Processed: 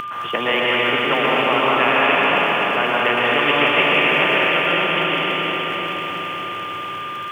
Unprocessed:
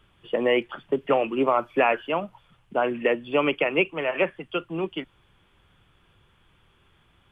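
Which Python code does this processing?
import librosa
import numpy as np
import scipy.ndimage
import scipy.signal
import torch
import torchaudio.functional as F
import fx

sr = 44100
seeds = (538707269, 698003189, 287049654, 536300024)

y = x + 10.0 ** (-28.0 / 20.0) * np.sin(2.0 * np.pi * 1200.0 * np.arange(len(x)) / sr)
y = scipy.signal.sosfilt(scipy.signal.cheby1(4, 1.0, [100.0, 3000.0], 'bandpass', fs=sr, output='sos'), y)
y = fx.tilt_eq(y, sr, slope=3.0)
y = fx.dmg_crackle(y, sr, seeds[0], per_s=44.0, level_db=-54.0)
y = fx.rev_plate(y, sr, seeds[1], rt60_s=3.7, hf_ratio=1.0, predelay_ms=105, drr_db=-7.0)
y = fx.spectral_comp(y, sr, ratio=2.0)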